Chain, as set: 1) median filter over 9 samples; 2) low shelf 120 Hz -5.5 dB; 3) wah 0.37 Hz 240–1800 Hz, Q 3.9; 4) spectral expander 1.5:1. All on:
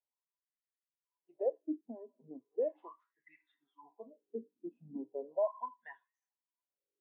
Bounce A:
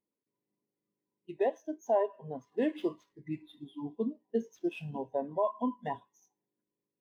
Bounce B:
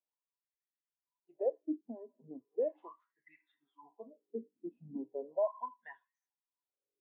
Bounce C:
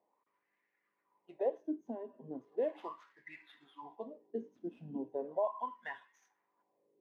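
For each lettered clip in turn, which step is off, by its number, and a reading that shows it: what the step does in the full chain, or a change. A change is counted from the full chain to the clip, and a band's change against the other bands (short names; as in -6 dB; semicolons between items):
3, 125 Hz band +8.5 dB; 2, 125 Hz band +2.5 dB; 4, 125 Hz band +5.5 dB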